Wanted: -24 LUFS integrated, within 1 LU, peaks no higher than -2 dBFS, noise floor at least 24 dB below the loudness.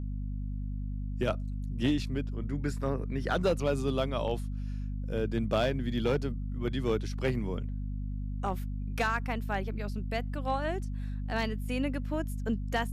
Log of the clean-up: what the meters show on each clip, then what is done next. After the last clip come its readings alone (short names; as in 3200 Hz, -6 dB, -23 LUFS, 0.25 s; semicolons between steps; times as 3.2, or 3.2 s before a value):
clipped 0.3%; flat tops at -20.0 dBFS; hum 50 Hz; harmonics up to 250 Hz; hum level -32 dBFS; loudness -33.0 LUFS; peak -20.0 dBFS; loudness target -24.0 LUFS
-> clip repair -20 dBFS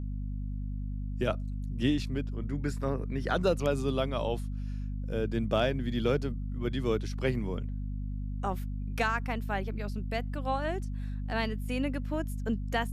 clipped 0.0%; hum 50 Hz; harmonics up to 250 Hz; hum level -32 dBFS
-> de-hum 50 Hz, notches 5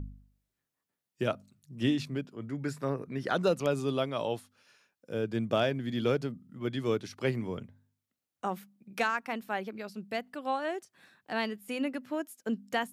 hum none; loudness -33.5 LUFS; peak -14.5 dBFS; loudness target -24.0 LUFS
-> gain +9.5 dB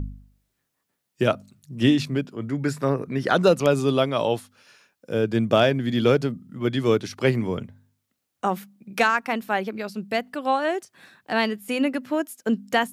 loudness -24.0 LUFS; peak -5.0 dBFS; noise floor -78 dBFS